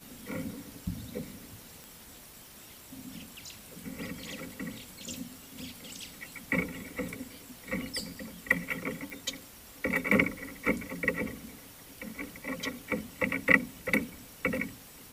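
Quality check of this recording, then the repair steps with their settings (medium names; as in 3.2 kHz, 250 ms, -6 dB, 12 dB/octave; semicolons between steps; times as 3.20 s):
1.84 s: pop
9.10 s: pop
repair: de-click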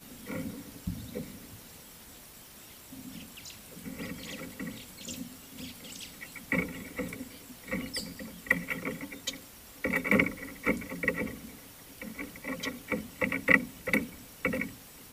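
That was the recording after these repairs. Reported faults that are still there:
nothing left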